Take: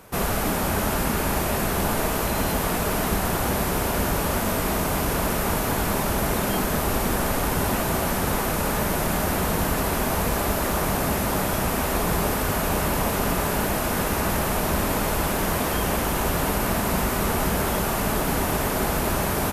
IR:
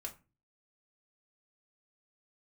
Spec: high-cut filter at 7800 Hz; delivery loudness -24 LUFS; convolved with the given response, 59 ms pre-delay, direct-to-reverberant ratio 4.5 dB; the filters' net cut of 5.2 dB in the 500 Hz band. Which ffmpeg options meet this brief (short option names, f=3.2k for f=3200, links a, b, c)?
-filter_complex "[0:a]lowpass=7.8k,equalizer=f=500:t=o:g=-7,asplit=2[a][b];[1:a]atrim=start_sample=2205,adelay=59[c];[b][c]afir=irnorm=-1:irlink=0,volume=-2dB[d];[a][d]amix=inputs=2:normalize=0,volume=0.5dB"